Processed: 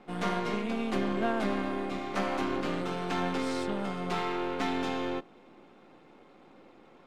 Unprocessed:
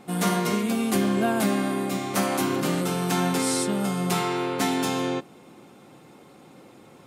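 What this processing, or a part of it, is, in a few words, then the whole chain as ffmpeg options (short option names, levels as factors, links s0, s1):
crystal radio: -af "highpass=220,lowpass=3300,aeval=exprs='if(lt(val(0),0),0.447*val(0),val(0))':c=same,volume=0.75"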